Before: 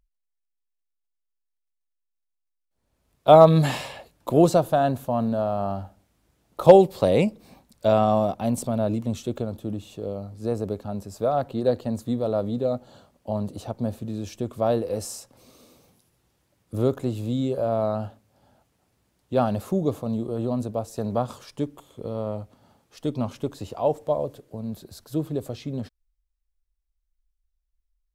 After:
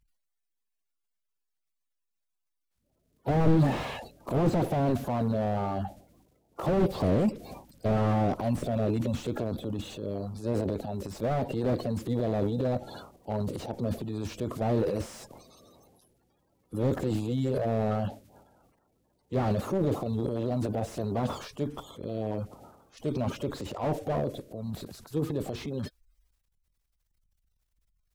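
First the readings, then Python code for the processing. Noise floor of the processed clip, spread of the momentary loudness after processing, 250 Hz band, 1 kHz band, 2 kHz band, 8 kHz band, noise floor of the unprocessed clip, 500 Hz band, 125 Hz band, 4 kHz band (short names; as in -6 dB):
-81 dBFS, 12 LU, -3.5 dB, -8.5 dB, -3.0 dB, -7.5 dB, -79 dBFS, -8.5 dB, -1.5 dB, -5.0 dB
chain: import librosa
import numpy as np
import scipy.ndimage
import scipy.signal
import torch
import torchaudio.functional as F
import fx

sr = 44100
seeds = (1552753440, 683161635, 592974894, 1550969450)

y = fx.spec_quant(x, sr, step_db=30)
y = fx.transient(y, sr, attack_db=-1, sustain_db=11)
y = fx.slew_limit(y, sr, full_power_hz=42.0)
y = F.gain(torch.from_numpy(y), -3.0).numpy()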